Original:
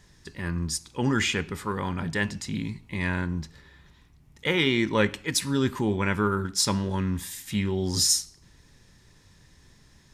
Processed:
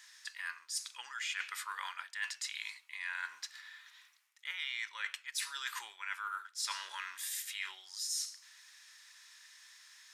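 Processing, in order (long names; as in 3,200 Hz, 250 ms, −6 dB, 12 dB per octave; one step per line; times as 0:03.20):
high-pass filter 1,300 Hz 24 dB per octave
reversed playback
downward compressor 8 to 1, threshold −41 dBFS, peak gain reduction 22 dB
reversed playback
level +4.5 dB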